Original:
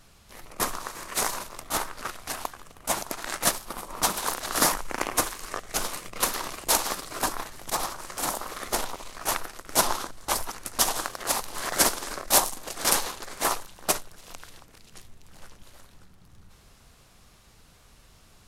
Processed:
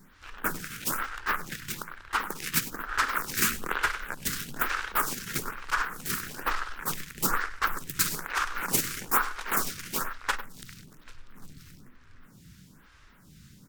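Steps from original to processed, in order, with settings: ten-band graphic EQ 125 Hz +10 dB, 500 Hz -11 dB, 1 kHz +6 dB, 8 kHz -5 dB; in parallel at -9.5 dB: wavefolder -21 dBFS; on the sum: echo from a far wall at 23 m, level -13 dB; speed mistake 33 rpm record played at 45 rpm; lamp-driven phase shifter 1.1 Hz

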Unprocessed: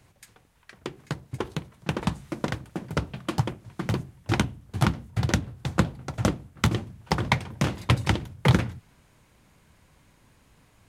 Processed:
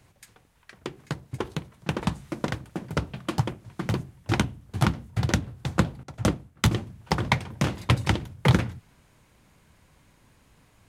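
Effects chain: 6.03–6.71 s: three bands expanded up and down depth 70%

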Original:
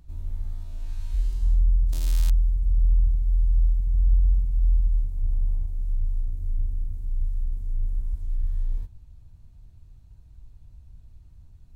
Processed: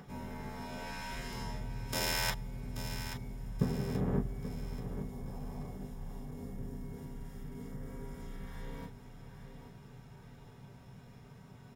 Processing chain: 3.61–4.18 s: comb filter that takes the minimum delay 4.6 ms; in parallel at -2.5 dB: compression, threshold -28 dBFS, peak gain reduction 12 dB; on the sum: feedback delay 832 ms, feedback 41%, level -10.5 dB; reverberation, pre-delay 3 ms, DRR -3.5 dB; trim +1 dB

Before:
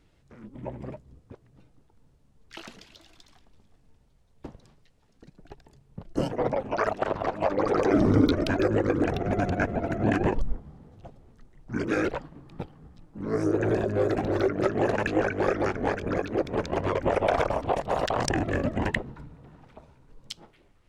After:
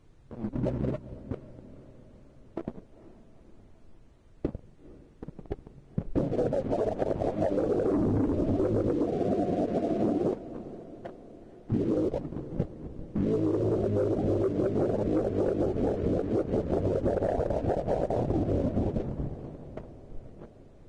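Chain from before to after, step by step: inverse Chebyshev low-pass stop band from 2.8 kHz, stop band 70 dB; spectral gate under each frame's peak -25 dB strong; 8.96–11.72 s: high-pass 230 Hz 12 dB/octave; waveshaping leveller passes 2; compression 10:1, threshold -30 dBFS, peak gain reduction 17 dB; added noise brown -62 dBFS; echo that smears into a reverb 469 ms, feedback 57%, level -16 dB; trim +5.5 dB; Vorbis 32 kbps 22.05 kHz

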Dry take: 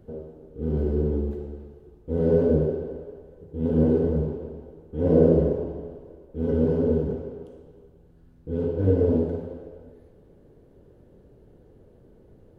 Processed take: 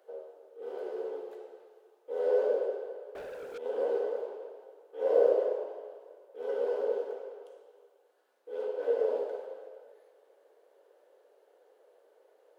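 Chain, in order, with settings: steep high-pass 490 Hz 36 dB/octave; 3.15–3.58 s: waveshaping leveller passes 5

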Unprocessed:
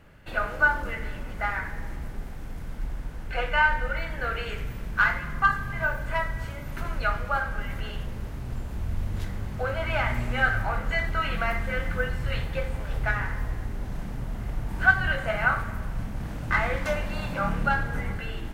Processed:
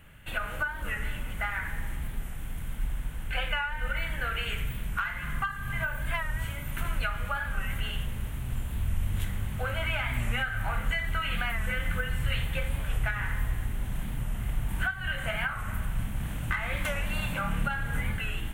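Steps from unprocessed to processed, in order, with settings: FFT filter 410 Hz 0 dB, 3.2 kHz +13 dB, 4.9 kHz -5 dB, 8.8 kHz +12 dB; compression 12:1, threshold -20 dBFS, peak gain reduction 15.5 dB; tone controls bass +9 dB, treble +6 dB; warped record 45 rpm, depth 100 cents; trim -8 dB

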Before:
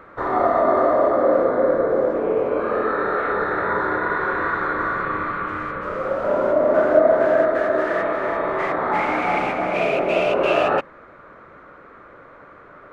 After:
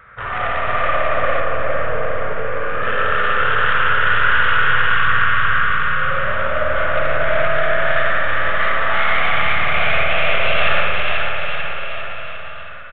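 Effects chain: tracing distortion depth 0.14 ms; in parallel at -3.5 dB: hard clipper -16 dBFS, distortion -12 dB; on the sum: FFT filter 130 Hz 0 dB, 330 Hz -24 dB, 470 Hz -12 dB, 930 Hz -11 dB, 1.5 kHz +1 dB; bouncing-ball echo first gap 490 ms, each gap 0.9×, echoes 5; spring tank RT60 1.9 s, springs 53 ms, chirp 75 ms, DRR -1.5 dB; resampled via 8 kHz; 1.40–2.83 s: distance through air 170 m; trim -1.5 dB

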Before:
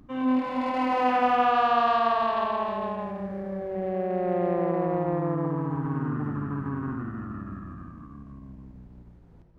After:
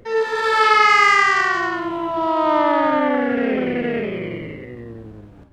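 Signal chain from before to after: speed mistake 45 rpm record played at 78 rpm; level rider gain up to 4 dB; trim +5 dB

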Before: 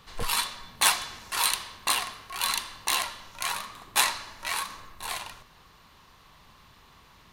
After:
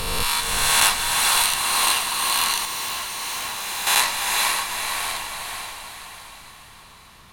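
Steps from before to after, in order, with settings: reverse spectral sustain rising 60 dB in 2.00 s; echo that smears into a reverb 471 ms, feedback 48%, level -3 dB; 2.65–3.87 s: valve stage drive 25 dB, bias 0.45

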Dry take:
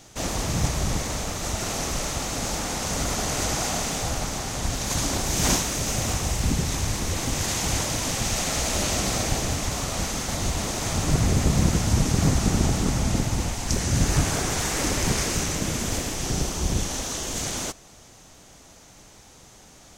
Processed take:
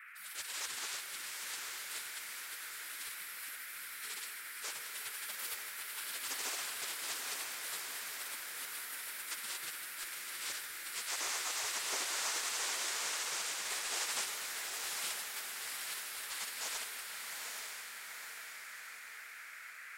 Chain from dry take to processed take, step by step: spectral gate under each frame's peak -25 dB weak; band noise 1.3–2.4 kHz -48 dBFS; echo that smears into a reverb 851 ms, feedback 53%, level -3.5 dB; on a send at -8 dB: reverberation RT60 2.1 s, pre-delay 82 ms; on the sum: trim -5.5 dB

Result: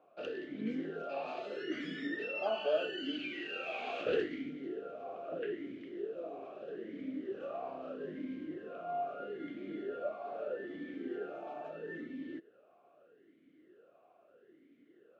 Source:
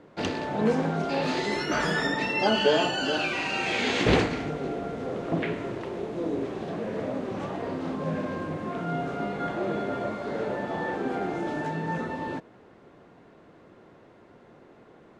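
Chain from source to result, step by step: 7.37–8.06 s: flutter echo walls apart 5.3 m, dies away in 0.37 s; talking filter a-i 0.78 Hz; trim -1 dB

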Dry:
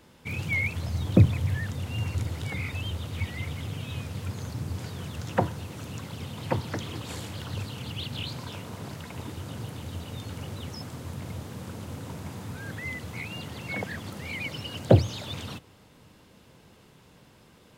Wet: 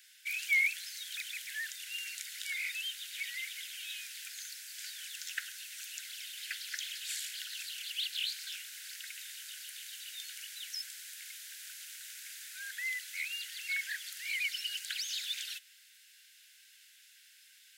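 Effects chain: steep high-pass 1.5 kHz 96 dB/octave; treble shelf 3.9 kHz +9 dB; trim -1.5 dB

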